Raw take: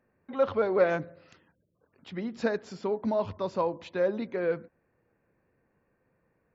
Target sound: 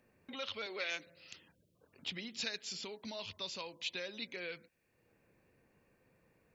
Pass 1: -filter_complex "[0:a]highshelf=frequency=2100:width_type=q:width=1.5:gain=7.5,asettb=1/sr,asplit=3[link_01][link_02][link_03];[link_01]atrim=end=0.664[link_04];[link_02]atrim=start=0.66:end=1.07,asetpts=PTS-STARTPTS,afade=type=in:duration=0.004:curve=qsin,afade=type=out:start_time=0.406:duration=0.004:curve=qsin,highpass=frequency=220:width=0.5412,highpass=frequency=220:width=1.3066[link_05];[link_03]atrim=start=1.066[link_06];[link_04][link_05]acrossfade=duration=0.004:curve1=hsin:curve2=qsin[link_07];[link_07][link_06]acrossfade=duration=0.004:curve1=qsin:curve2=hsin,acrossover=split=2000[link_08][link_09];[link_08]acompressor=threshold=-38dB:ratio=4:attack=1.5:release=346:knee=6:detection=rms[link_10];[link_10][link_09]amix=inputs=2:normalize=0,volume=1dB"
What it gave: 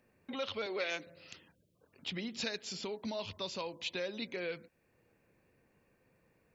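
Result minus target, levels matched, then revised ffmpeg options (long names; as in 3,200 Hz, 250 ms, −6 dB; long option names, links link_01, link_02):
downward compressor: peak gain reduction −7 dB
-filter_complex "[0:a]highshelf=frequency=2100:width_type=q:width=1.5:gain=7.5,asettb=1/sr,asplit=3[link_01][link_02][link_03];[link_01]atrim=end=0.664[link_04];[link_02]atrim=start=0.66:end=1.07,asetpts=PTS-STARTPTS,afade=type=in:duration=0.004:curve=qsin,afade=type=out:start_time=0.406:duration=0.004:curve=qsin,highpass=frequency=220:width=0.5412,highpass=frequency=220:width=1.3066[link_05];[link_03]atrim=start=1.066[link_06];[link_04][link_05]acrossfade=duration=0.004:curve1=hsin:curve2=qsin[link_07];[link_07][link_06]acrossfade=duration=0.004:curve1=qsin:curve2=hsin,acrossover=split=2000[link_08][link_09];[link_08]acompressor=threshold=-47.5dB:ratio=4:attack=1.5:release=346:knee=6:detection=rms[link_10];[link_10][link_09]amix=inputs=2:normalize=0,volume=1dB"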